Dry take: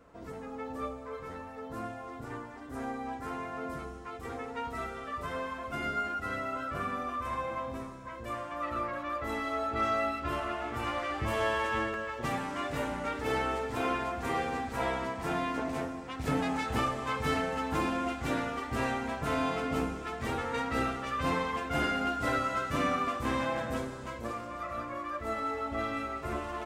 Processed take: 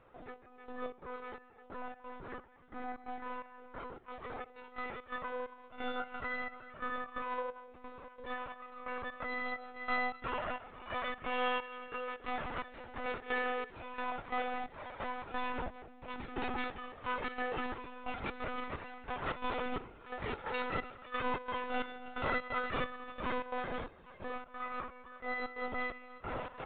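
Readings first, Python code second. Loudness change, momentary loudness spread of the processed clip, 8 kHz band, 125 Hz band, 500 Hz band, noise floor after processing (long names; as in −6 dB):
−6.0 dB, 12 LU, below −30 dB, −12.5 dB, −6.5 dB, −58 dBFS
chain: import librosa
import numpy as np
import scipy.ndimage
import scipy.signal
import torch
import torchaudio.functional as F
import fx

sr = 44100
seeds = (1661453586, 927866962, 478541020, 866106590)

p1 = x + fx.echo_feedback(x, sr, ms=282, feedback_pct=56, wet_db=-16, dry=0)
p2 = fx.step_gate(p1, sr, bpm=132, pattern='xxx...xx.', floor_db=-12.0, edge_ms=4.5)
p3 = fx.low_shelf(p2, sr, hz=280.0, db=-8.5)
p4 = fx.lpc_monotone(p3, sr, seeds[0], pitch_hz=250.0, order=16)
y = p4 * librosa.db_to_amplitude(-2.0)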